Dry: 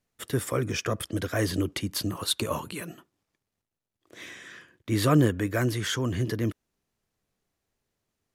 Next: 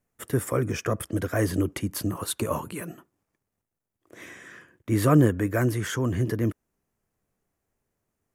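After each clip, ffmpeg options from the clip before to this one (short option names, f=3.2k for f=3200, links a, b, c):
-af "equalizer=f=3.9k:w=1.1:g=-11.5,volume=2.5dB"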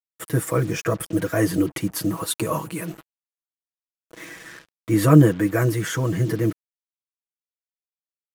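-af "aecho=1:1:6.2:0.91,acrusher=bits=6:mix=0:aa=0.5,volume=1.5dB"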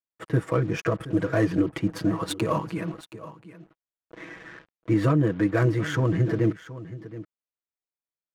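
-af "alimiter=limit=-12.5dB:level=0:latency=1:release=280,adynamicsmooth=sensitivity=2.5:basefreq=2.2k,aecho=1:1:723:0.168"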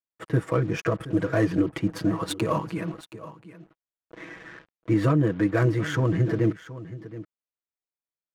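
-af anull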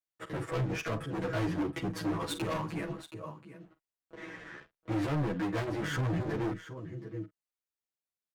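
-filter_complex "[0:a]asplit=2[a][b];[b]adelay=46,volume=-14dB[c];[a][c]amix=inputs=2:normalize=0,asoftclip=type=hard:threshold=-27dB,asplit=2[d][e];[e]adelay=11.8,afreqshift=-1.7[f];[d][f]amix=inputs=2:normalize=1"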